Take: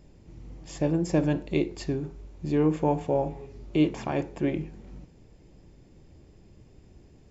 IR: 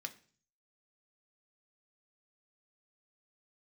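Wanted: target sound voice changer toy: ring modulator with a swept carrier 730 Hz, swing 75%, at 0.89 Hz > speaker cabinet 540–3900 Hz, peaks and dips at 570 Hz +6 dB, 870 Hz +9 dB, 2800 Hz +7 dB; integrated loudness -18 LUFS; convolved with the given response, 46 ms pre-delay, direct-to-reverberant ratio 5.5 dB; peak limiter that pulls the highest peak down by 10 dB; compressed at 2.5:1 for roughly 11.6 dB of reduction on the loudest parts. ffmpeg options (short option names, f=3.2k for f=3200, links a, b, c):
-filter_complex "[0:a]acompressor=threshold=-36dB:ratio=2.5,alimiter=level_in=5.5dB:limit=-24dB:level=0:latency=1,volume=-5.5dB,asplit=2[a][b];[1:a]atrim=start_sample=2205,adelay=46[c];[b][c]afir=irnorm=-1:irlink=0,volume=-3.5dB[d];[a][d]amix=inputs=2:normalize=0,aeval=exprs='val(0)*sin(2*PI*730*n/s+730*0.75/0.89*sin(2*PI*0.89*n/s))':c=same,highpass=540,equalizer=f=570:t=q:w=4:g=6,equalizer=f=870:t=q:w=4:g=9,equalizer=f=2.8k:t=q:w=4:g=7,lowpass=f=3.9k:w=0.5412,lowpass=f=3.9k:w=1.3066,volume=22dB"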